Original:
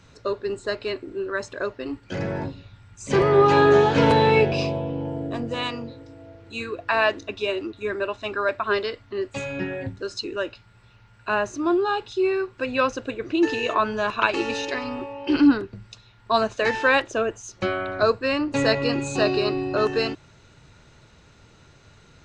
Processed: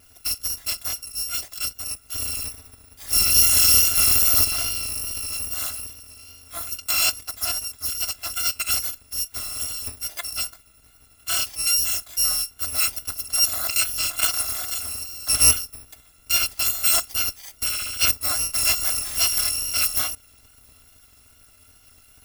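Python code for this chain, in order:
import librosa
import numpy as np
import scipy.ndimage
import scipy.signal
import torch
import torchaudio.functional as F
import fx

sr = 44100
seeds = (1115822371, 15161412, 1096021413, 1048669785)

y = fx.bit_reversed(x, sr, seeds[0], block=256)
y = fx.vibrato(y, sr, rate_hz=2.4, depth_cents=24.0)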